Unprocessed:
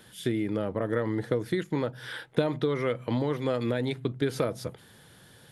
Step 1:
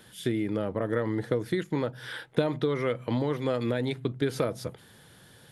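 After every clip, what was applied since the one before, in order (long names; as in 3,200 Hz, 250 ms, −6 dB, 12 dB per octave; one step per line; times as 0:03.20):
no processing that can be heard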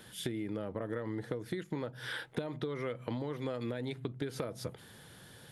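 downward compressor 6 to 1, threshold −34 dBFS, peak gain reduction 14 dB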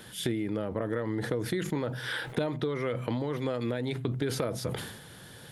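level that may fall only so fast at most 56 dB per second
level +5.5 dB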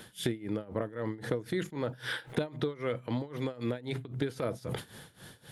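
amplitude tremolo 3.8 Hz, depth 88%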